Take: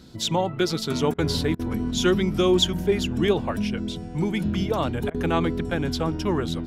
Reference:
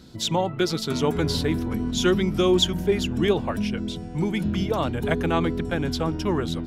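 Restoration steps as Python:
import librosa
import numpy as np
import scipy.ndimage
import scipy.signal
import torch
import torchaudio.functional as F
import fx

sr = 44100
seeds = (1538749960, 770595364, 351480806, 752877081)

y = fx.fix_interpolate(x, sr, at_s=(1.14, 1.55, 5.1), length_ms=42.0)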